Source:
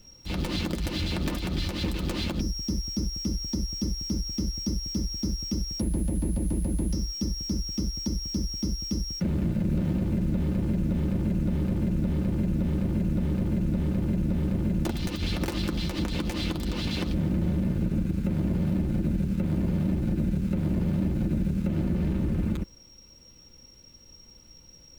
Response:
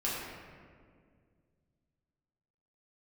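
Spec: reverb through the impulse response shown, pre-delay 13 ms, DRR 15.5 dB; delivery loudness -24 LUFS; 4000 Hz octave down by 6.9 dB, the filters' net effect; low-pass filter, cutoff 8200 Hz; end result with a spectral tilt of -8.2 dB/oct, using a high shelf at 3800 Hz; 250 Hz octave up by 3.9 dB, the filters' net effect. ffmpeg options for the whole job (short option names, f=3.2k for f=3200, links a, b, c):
-filter_complex "[0:a]lowpass=8.2k,equalizer=f=250:t=o:g=5.5,highshelf=f=3.8k:g=-3.5,equalizer=f=4k:t=o:g=-7,asplit=2[a][b];[1:a]atrim=start_sample=2205,adelay=13[c];[b][c]afir=irnorm=-1:irlink=0,volume=-22dB[d];[a][d]amix=inputs=2:normalize=0,volume=2dB"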